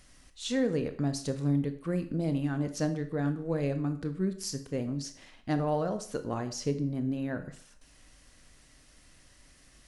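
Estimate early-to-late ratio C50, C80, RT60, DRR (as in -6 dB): 12.0 dB, 16.0 dB, 0.55 s, 8.5 dB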